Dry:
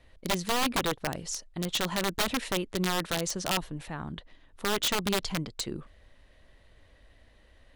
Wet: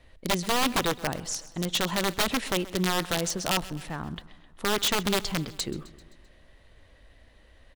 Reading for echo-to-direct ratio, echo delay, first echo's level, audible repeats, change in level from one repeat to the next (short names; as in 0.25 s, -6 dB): -16.5 dB, 0.13 s, -18.5 dB, 4, -4.5 dB